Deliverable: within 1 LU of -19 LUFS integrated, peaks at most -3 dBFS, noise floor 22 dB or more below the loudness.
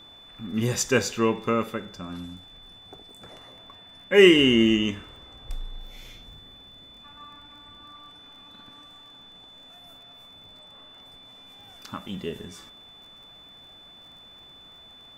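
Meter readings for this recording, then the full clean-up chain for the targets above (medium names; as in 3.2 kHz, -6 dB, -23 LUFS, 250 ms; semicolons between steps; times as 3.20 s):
tick rate 31 per s; steady tone 3.5 kHz; tone level -47 dBFS; loudness -22.0 LUFS; peak level -2.0 dBFS; loudness target -19.0 LUFS
-> de-click; band-stop 3.5 kHz, Q 30; trim +3 dB; peak limiter -3 dBFS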